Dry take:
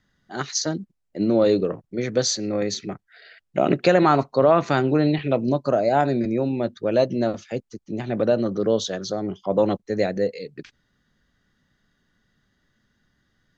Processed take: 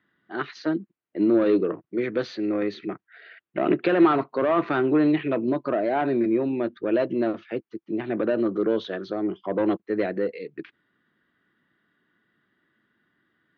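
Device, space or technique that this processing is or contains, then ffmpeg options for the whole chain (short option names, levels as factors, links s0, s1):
overdrive pedal into a guitar cabinet: -filter_complex "[0:a]asplit=2[s0][s1];[s1]highpass=f=720:p=1,volume=7.08,asoftclip=type=tanh:threshold=0.668[s2];[s0][s2]amix=inputs=2:normalize=0,lowpass=f=1500:p=1,volume=0.501,highpass=110,equalizer=f=330:t=q:w=4:g=8,equalizer=f=550:t=q:w=4:g=-6,equalizer=f=800:t=q:w=4:g=-6,lowpass=f=3400:w=0.5412,lowpass=f=3400:w=1.3066,volume=0.501"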